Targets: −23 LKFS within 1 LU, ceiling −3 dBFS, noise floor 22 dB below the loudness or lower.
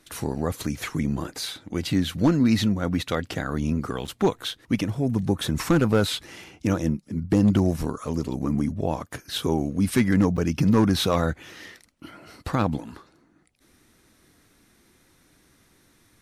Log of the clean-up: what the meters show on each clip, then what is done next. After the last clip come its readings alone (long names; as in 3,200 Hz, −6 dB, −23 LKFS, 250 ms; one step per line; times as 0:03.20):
share of clipped samples 0.4%; peaks flattened at −12.0 dBFS; number of dropouts 2; longest dropout 7.0 ms; integrated loudness −24.5 LKFS; sample peak −12.0 dBFS; target loudness −23.0 LKFS
→ clipped peaks rebuilt −12 dBFS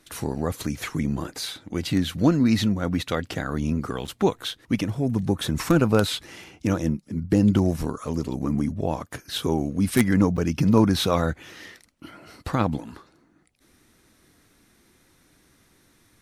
share of clipped samples 0.0%; number of dropouts 2; longest dropout 7.0 ms
→ repair the gap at 0:04.07/0:10.37, 7 ms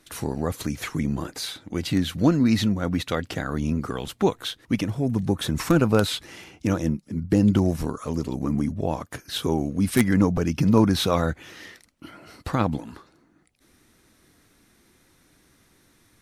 number of dropouts 0; integrated loudness −24.5 LKFS; sample peak −3.0 dBFS; target loudness −23.0 LKFS
→ level +1.5 dB
brickwall limiter −3 dBFS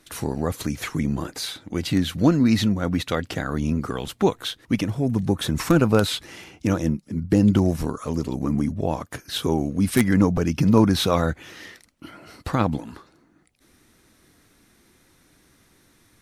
integrated loudness −23.0 LKFS; sample peak −3.0 dBFS; background noise floor −60 dBFS